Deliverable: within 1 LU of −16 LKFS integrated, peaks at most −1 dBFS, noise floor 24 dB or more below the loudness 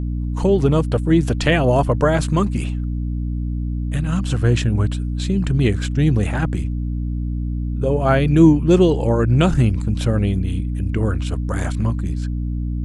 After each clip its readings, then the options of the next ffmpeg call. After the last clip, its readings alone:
mains hum 60 Hz; hum harmonics up to 300 Hz; level of the hum −20 dBFS; integrated loudness −19.0 LKFS; sample peak −1.0 dBFS; target loudness −16.0 LKFS
→ -af "bandreject=frequency=60:width_type=h:width=4,bandreject=frequency=120:width_type=h:width=4,bandreject=frequency=180:width_type=h:width=4,bandreject=frequency=240:width_type=h:width=4,bandreject=frequency=300:width_type=h:width=4"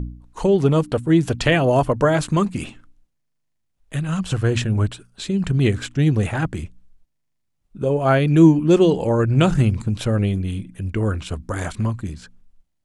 mains hum none found; integrated loudness −19.5 LKFS; sample peak −2.5 dBFS; target loudness −16.0 LKFS
→ -af "volume=3.5dB,alimiter=limit=-1dB:level=0:latency=1"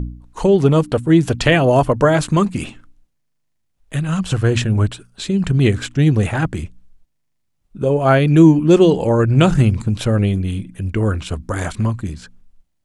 integrated loudness −16.0 LKFS; sample peak −1.0 dBFS; background noise floor −68 dBFS

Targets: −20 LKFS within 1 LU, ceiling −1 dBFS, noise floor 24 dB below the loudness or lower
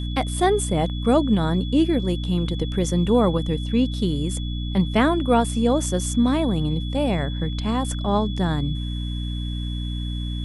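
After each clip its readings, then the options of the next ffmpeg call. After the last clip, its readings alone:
mains hum 60 Hz; hum harmonics up to 300 Hz; level of the hum −25 dBFS; interfering tone 3,400 Hz; level of the tone −37 dBFS; integrated loudness −22.5 LKFS; sample peak −6.0 dBFS; target loudness −20.0 LKFS
→ -af "bandreject=frequency=60:width_type=h:width=6,bandreject=frequency=120:width_type=h:width=6,bandreject=frequency=180:width_type=h:width=6,bandreject=frequency=240:width_type=h:width=6,bandreject=frequency=300:width_type=h:width=6"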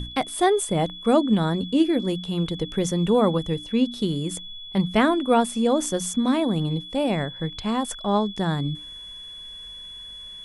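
mains hum none found; interfering tone 3,400 Hz; level of the tone −37 dBFS
→ -af "bandreject=frequency=3400:width=30"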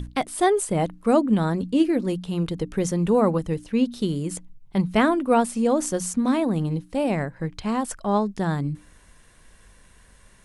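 interfering tone none found; integrated loudness −23.5 LKFS; sample peak −7.0 dBFS; target loudness −20.0 LKFS
→ -af "volume=3.5dB"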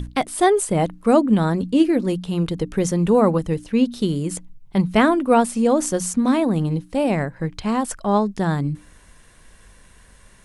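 integrated loudness −20.0 LKFS; sample peak −3.5 dBFS; background noise floor −51 dBFS

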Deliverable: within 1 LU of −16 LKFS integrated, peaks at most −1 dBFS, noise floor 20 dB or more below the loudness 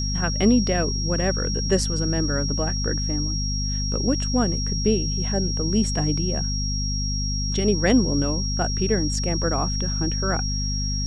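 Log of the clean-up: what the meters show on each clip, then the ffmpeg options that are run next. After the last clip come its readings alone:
mains hum 50 Hz; hum harmonics up to 250 Hz; level of the hum −23 dBFS; interfering tone 5,600 Hz; level of the tone −28 dBFS; integrated loudness −23.0 LKFS; sample peak −7.0 dBFS; target loudness −16.0 LKFS
→ -af "bandreject=frequency=50:width_type=h:width=6,bandreject=frequency=100:width_type=h:width=6,bandreject=frequency=150:width_type=h:width=6,bandreject=frequency=200:width_type=h:width=6,bandreject=frequency=250:width_type=h:width=6"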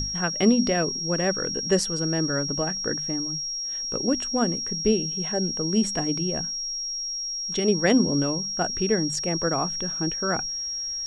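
mains hum none found; interfering tone 5,600 Hz; level of the tone −28 dBFS
→ -af "bandreject=frequency=5600:width=30"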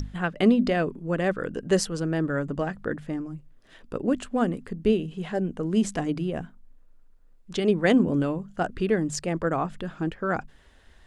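interfering tone none found; integrated loudness −26.5 LKFS; sample peak −8.5 dBFS; target loudness −16.0 LKFS
→ -af "volume=10.5dB,alimiter=limit=-1dB:level=0:latency=1"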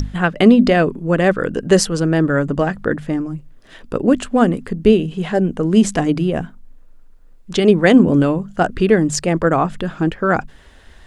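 integrated loudness −16.5 LKFS; sample peak −1.0 dBFS; background noise floor −44 dBFS

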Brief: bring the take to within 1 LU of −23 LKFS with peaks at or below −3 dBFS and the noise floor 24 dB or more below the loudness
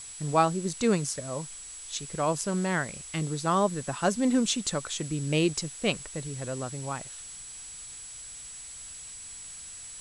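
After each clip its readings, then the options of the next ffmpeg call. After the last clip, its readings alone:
interfering tone 7,800 Hz; level of the tone −42 dBFS; background noise floor −44 dBFS; target noise floor −55 dBFS; integrated loudness −30.5 LKFS; sample peak −9.5 dBFS; target loudness −23.0 LKFS
→ -af "bandreject=frequency=7800:width=30"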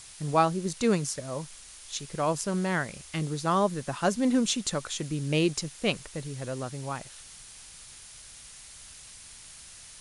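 interfering tone none found; background noise floor −48 dBFS; target noise floor −53 dBFS
→ -af "afftdn=noise_reduction=6:noise_floor=-48"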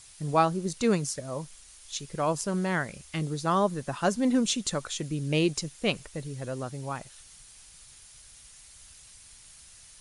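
background noise floor −52 dBFS; target noise floor −53 dBFS
→ -af "afftdn=noise_reduction=6:noise_floor=-52"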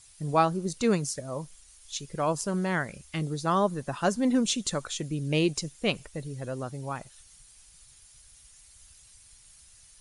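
background noise floor −56 dBFS; integrated loudness −29.5 LKFS; sample peak −10.0 dBFS; target loudness −23.0 LKFS
→ -af "volume=6.5dB"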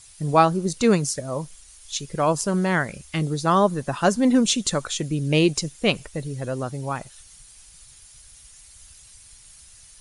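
integrated loudness −23.0 LKFS; sample peak −3.5 dBFS; background noise floor −49 dBFS

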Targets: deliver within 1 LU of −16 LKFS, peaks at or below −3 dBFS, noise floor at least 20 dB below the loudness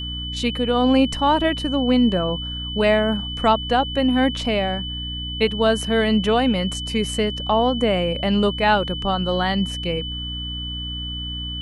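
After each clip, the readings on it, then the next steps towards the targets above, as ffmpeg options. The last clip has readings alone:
mains hum 60 Hz; hum harmonics up to 300 Hz; level of the hum −29 dBFS; interfering tone 3,000 Hz; level of the tone −29 dBFS; integrated loudness −21.0 LKFS; sample peak −5.5 dBFS; target loudness −16.0 LKFS
→ -af "bandreject=frequency=60:width_type=h:width=4,bandreject=frequency=120:width_type=h:width=4,bandreject=frequency=180:width_type=h:width=4,bandreject=frequency=240:width_type=h:width=4,bandreject=frequency=300:width_type=h:width=4"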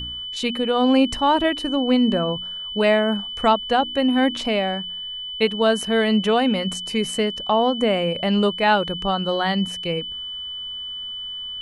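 mains hum none found; interfering tone 3,000 Hz; level of the tone −29 dBFS
→ -af "bandreject=frequency=3000:width=30"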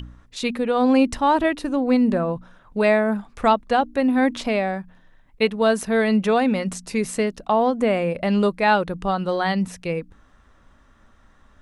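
interfering tone none found; integrated loudness −21.0 LKFS; sample peak −6.0 dBFS; target loudness −16.0 LKFS
→ -af "volume=5dB,alimiter=limit=-3dB:level=0:latency=1"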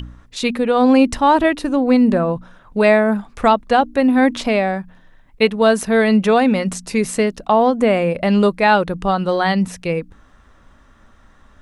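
integrated loudness −16.5 LKFS; sample peak −3.0 dBFS; background noise floor −50 dBFS

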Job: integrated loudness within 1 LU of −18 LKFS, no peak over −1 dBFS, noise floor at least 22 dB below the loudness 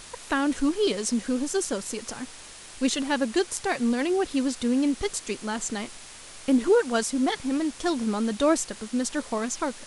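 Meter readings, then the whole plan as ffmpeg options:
background noise floor −45 dBFS; target noise floor −49 dBFS; integrated loudness −26.5 LKFS; sample peak −10.0 dBFS; target loudness −18.0 LKFS
→ -af "afftdn=noise_reduction=6:noise_floor=-45"
-af "volume=8.5dB"

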